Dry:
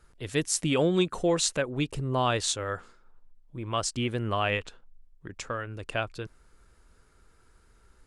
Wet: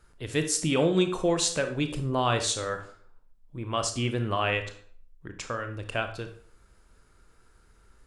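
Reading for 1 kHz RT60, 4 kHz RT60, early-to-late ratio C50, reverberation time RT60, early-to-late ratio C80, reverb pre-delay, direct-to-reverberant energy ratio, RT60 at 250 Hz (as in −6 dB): 0.50 s, 0.40 s, 9.5 dB, 0.50 s, 14.0 dB, 24 ms, 7.0 dB, 0.55 s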